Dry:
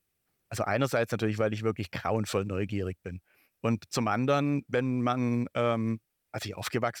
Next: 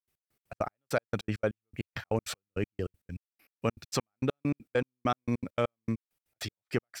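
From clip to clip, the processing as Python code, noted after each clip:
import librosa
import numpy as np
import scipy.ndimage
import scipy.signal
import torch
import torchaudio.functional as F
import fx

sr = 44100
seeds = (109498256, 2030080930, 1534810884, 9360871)

y = fx.step_gate(x, sr, bpm=199, pattern='.x..x.x.x..', floor_db=-60.0, edge_ms=4.5)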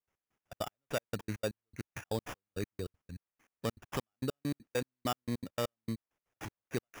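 y = fx.sample_hold(x, sr, seeds[0], rate_hz=4200.0, jitter_pct=0)
y = F.gain(torch.from_numpy(y), -5.5).numpy()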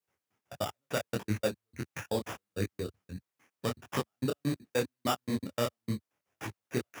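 y = scipy.signal.sosfilt(scipy.signal.butter(4, 79.0, 'highpass', fs=sr, output='sos'), x)
y = fx.detune_double(y, sr, cents=53)
y = F.gain(torch.from_numpy(y), 8.0).numpy()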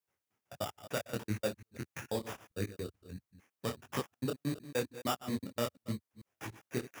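y = fx.reverse_delay(x, sr, ms=148, wet_db=-14)
y = fx.high_shelf(y, sr, hz=9200.0, db=3.5)
y = F.gain(torch.from_numpy(y), -4.0).numpy()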